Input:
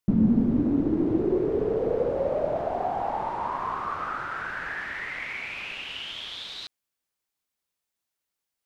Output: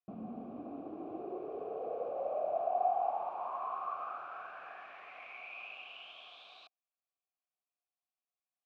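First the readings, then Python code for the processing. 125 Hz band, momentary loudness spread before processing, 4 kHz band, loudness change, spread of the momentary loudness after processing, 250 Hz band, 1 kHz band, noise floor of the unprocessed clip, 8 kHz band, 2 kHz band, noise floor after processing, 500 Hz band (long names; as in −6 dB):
below −25 dB, 11 LU, −17.5 dB, −11.5 dB, 17 LU, −22.5 dB, −5.5 dB, −85 dBFS, can't be measured, −16.5 dB, below −85 dBFS, −11.0 dB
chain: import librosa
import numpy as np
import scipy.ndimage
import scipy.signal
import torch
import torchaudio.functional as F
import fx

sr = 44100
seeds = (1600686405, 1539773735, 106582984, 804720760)

y = fx.vowel_filter(x, sr, vowel='a')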